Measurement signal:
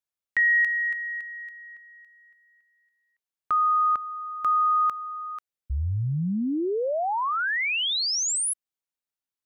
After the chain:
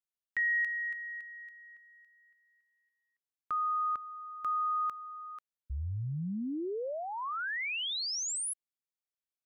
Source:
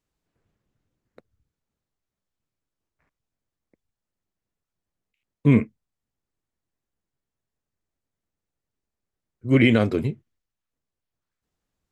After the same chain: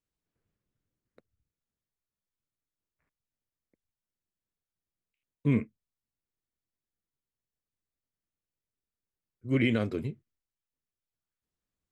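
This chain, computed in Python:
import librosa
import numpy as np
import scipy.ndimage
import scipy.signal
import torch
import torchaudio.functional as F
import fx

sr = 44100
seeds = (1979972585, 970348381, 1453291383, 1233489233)

y = fx.peak_eq(x, sr, hz=790.0, db=-3.5, octaves=0.69)
y = y * 10.0 ** (-9.0 / 20.0)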